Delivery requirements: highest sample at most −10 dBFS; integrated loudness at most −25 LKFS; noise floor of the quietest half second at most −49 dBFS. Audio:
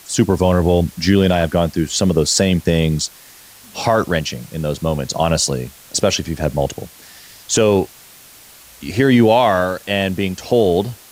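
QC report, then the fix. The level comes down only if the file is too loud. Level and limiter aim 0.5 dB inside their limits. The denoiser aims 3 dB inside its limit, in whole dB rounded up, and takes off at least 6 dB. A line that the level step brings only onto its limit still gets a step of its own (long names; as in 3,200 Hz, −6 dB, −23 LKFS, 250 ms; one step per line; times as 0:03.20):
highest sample −3.0 dBFS: out of spec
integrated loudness −17.0 LKFS: out of spec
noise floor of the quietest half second −43 dBFS: out of spec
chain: level −8.5 dB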